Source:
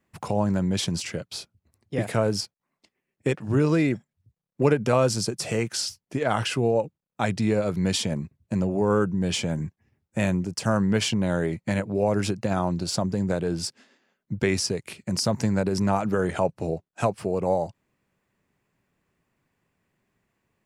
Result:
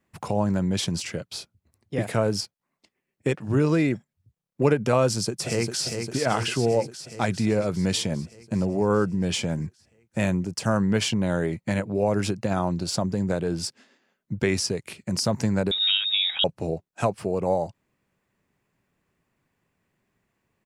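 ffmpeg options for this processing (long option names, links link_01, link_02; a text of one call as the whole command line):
ffmpeg -i in.wav -filter_complex "[0:a]asplit=2[link_01][link_02];[link_02]afade=type=in:start_time=5.06:duration=0.01,afade=type=out:start_time=5.85:duration=0.01,aecho=0:1:400|800|1200|1600|2000|2400|2800|3200|3600|4000|4400:0.501187|0.350831|0.245582|0.171907|0.120335|0.0842345|0.0589642|0.0412749|0.0288924|0.0202247|0.0141573[link_03];[link_01][link_03]amix=inputs=2:normalize=0,asettb=1/sr,asplit=3[link_04][link_05][link_06];[link_04]atrim=end=15.714[link_07];[link_05]atrim=start=15.71:end=16.44,asetpts=PTS-STARTPTS,afade=type=in:duration=0.004:curve=qsin,afade=type=out:start_time=0.726:duration=0.004:curve=qsin,lowpass=frequency=3300:width_type=q:width=0.5098,lowpass=frequency=3300:width_type=q:width=0.6013,lowpass=frequency=3300:width_type=q:width=0.9,lowpass=frequency=3300:width_type=q:width=2.563,afreqshift=-3900[link_08];[link_06]atrim=start=16.436[link_09];[link_07][link_08]acrossfade=duration=0.004:curve1=hsin:curve2=qsin[link_10];[link_10][link_09]acrossfade=duration=0.004:curve1=qsin:curve2=hsin" out.wav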